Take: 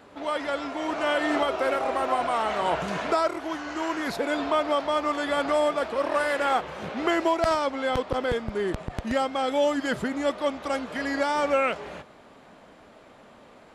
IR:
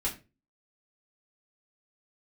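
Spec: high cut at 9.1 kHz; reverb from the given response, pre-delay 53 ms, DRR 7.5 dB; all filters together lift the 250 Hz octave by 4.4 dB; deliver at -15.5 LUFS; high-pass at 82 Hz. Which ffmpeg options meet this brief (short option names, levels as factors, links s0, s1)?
-filter_complex "[0:a]highpass=82,lowpass=9100,equalizer=f=250:t=o:g=5.5,asplit=2[s0][s1];[1:a]atrim=start_sample=2205,adelay=53[s2];[s1][s2]afir=irnorm=-1:irlink=0,volume=0.237[s3];[s0][s3]amix=inputs=2:normalize=0,volume=2.82"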